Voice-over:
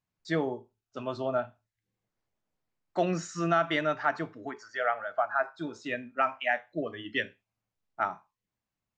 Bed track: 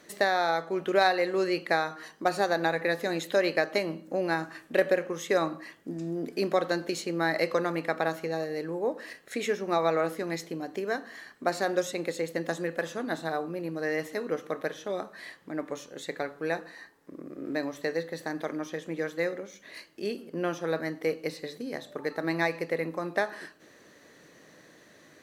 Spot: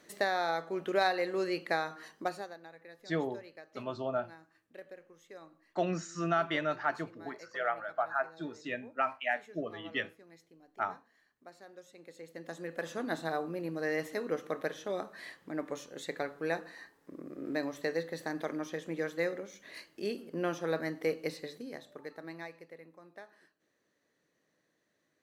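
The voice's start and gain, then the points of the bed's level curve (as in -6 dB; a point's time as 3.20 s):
2.80 s, -4.0 dB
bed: 2.22 s -5.5 dB
2.61 s -25 dB
11.82 s -25 dB
12.98 s -3 dB
21.32 s -3 dB
22.85 s -22.5 dB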